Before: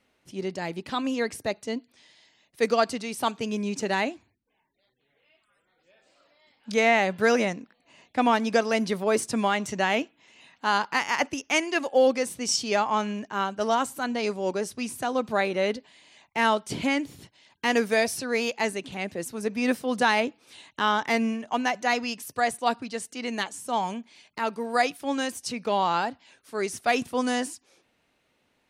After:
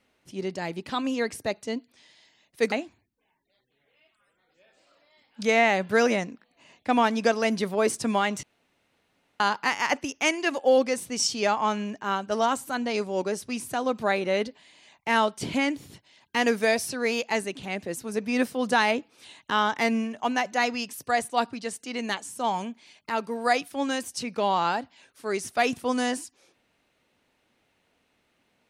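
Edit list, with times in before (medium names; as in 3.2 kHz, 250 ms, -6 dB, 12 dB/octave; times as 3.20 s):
2.72–4.01 s: delete
9.72–10.69 s: room tone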